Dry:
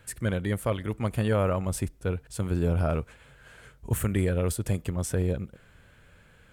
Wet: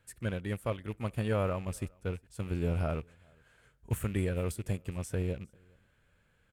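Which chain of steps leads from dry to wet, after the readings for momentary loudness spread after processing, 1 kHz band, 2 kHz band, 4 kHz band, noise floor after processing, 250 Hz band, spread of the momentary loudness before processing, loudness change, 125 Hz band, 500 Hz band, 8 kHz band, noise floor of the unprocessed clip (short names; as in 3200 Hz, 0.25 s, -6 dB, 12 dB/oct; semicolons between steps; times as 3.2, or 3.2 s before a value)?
8 LU, -6.0 dB, -5.5 dB, -6.5 dB, -70 dBFS, -6.5 dB, 7 LU, -6.5 dB, -6.0 dB, -6.0 dB, -10.5 dB, -57 dBFS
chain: rattling part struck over -29 dBFS, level -33 dBFS; on a send: echo 0.41 s -23.5 dB; on the sum: upward expander 1.5:1, over -39 dBFS; gain -4.5 dB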